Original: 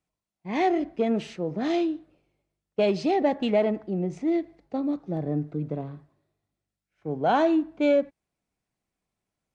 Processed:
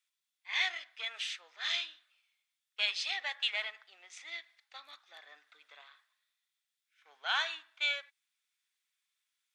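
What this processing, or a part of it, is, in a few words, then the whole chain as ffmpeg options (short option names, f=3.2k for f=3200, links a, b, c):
headphones lying on a table: -af "highpass=f=1.5k:w=0.5412,highpass=f=1.5k:w=1.3066,equalizer=f=3.5k:t=o:w=0.22:g=9,volume=3.5dB"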